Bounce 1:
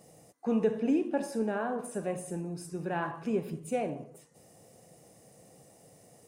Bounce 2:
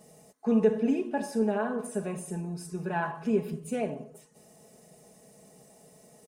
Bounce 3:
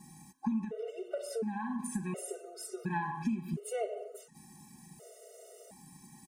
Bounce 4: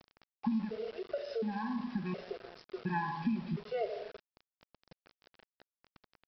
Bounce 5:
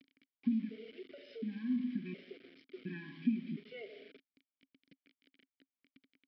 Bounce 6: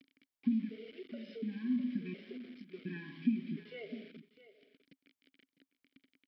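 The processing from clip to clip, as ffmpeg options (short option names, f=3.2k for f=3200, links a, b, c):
-af "aecho=1:1:4.7:0.74"
-af "acompressor=threshold=-33dB:ratio=16,afftfilt=real='re*gt(sin(2*PI*0.7*pts/sr)*(1-2*mod(floor(b*sr/1024/380),2)),0)':imag='im*gt(sin(2*PI*0.7*pts/sr)*(1-2*mod(floor(b*sr/1024/380),2)),0)':win_size=1024:overlap=0.75,volume=5dB"
-af "aecho=1:1:84|168|252|336|420:0.106|0.0614|0.0356|0.0207|0.012,aresample=11025,aeval=exprs='val(0)*gte(abs(val(0)),0.00473)':c=same,aresample=44100"
-filter_complex "[0:a]asplit=3[a][b][c];[a]bandpass=f=270:t=q:w=8,volume=0dB[d];[b]bandpass=f=2.29k:t=q:w=8,volume=-6dB[e];[c]bandpass=f=3.01k:t=q:w=8,volume=-9dB[f];[d][e][f]amix=inputs=3:normalize=0,volume=8.5dB"
-af "aecho=1:1:654:0.178,volume=1dB"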